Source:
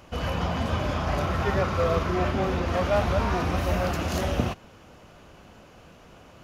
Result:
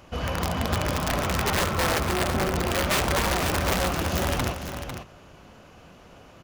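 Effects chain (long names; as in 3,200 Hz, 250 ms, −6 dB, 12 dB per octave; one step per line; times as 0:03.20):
0:01.73–0:02.56: high-frequency loss of the air 280 metres
wrap-around overflow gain 18 dB
on a send: multi-tap delay 68/294/499 ms −16.5/−13/−8.5 dB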